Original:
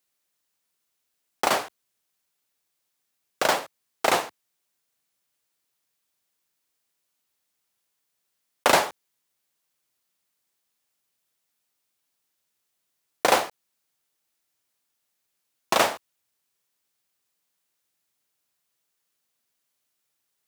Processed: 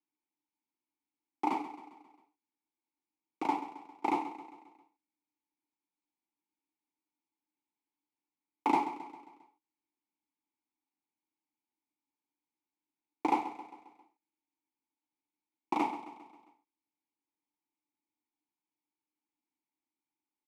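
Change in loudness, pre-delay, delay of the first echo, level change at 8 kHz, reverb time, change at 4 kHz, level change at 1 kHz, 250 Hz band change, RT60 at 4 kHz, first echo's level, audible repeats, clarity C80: -11.0 dB, none, 0.134 s, under -25 dB, none, -24.0 dB, -6.5 dB, +0.5 dB, none, -13.0 dB, 4, none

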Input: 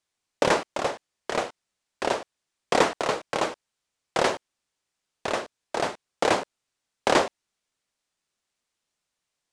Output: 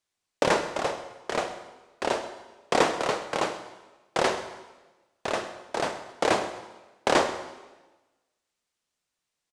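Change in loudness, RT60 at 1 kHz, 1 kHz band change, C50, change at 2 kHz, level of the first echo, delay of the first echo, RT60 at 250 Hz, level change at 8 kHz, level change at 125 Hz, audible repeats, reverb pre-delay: -1.0 dB, 1.1 s, -1.0 dB, 10.0 dB, -1.0 dB, -17.0 dB, 0.131 s, 1.3 s, -1.0 dB, -1.0 dB, 1, 22 ms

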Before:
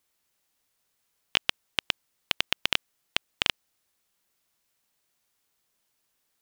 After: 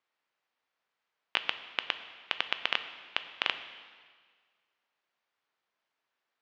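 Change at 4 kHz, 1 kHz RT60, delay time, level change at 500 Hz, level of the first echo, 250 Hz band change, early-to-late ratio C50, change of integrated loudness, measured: -6.0 dB, 1.7 s, none, -3.5 dB, none, -8.5 dB, 11.0 dB, -4.5 dB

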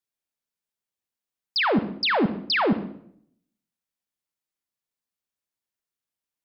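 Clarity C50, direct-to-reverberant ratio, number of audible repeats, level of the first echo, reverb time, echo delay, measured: 11.0 dB, 9.0 dB, none, none, 0.65 s, none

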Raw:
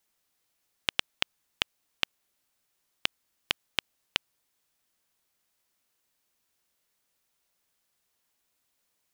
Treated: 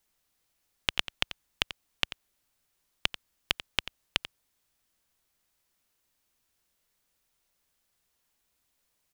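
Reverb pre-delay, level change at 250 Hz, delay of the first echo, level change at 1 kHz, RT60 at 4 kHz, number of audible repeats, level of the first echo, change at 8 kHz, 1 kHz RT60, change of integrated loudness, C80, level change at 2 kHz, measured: none, +1.5 dB, 89 ms, +0.5 dB, none, 1, -13.5 dB, 0.0 dB, none, 0.0 dB, none, 0.0 dB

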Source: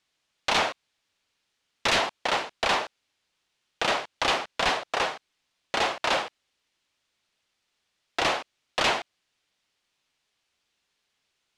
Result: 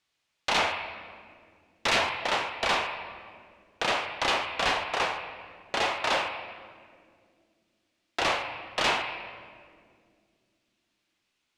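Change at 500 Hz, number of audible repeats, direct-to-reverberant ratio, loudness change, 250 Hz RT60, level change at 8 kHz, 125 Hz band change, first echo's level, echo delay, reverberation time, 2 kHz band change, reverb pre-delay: -2.0 dB, none, 2.5 dB, -1.5 dB, 3.7 s, -2.5 dB, -1.0 dB, none, none, 2.1 s, 0.0 dB, 16 ms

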